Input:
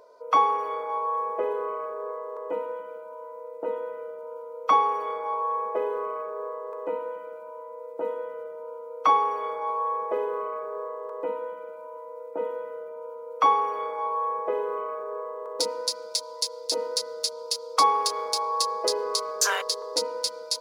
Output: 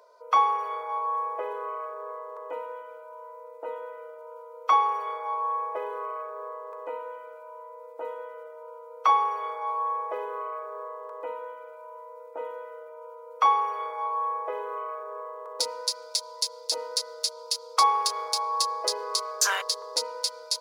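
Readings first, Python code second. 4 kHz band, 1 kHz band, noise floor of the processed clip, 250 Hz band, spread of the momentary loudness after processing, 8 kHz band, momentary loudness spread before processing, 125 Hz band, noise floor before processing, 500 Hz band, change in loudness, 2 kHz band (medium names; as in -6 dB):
0.0 dB, -0.5 dB, -45 dBFS, under -10 dB, 21 LU, 0.0 dB, 17 LU, no reading, -41 dBFS, -6.5 dB, -1.0 dB, 0.0 dB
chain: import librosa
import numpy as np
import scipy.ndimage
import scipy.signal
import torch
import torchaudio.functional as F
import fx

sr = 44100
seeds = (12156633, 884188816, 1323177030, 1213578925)

y = scipy.signal.sosfilt(scipy.signal.butter(2, 660.0, 'highpass', fs=sr, output='sos'), x)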